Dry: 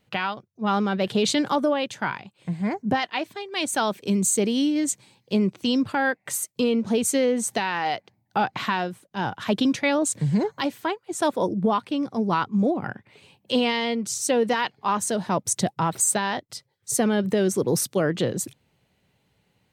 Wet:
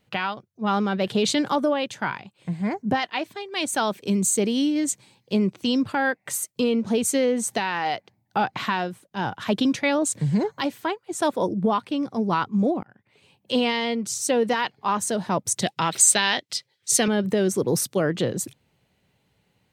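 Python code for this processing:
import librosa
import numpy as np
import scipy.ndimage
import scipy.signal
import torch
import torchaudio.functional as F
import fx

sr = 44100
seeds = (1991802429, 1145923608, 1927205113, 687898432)

y = fx.weighting(x, sr, curve='D', at=(15.62, 17.08))
y = fx.edit(y, sr, fx.fade_in_span(start_s=12.83, length_s=0.76), tone=tone)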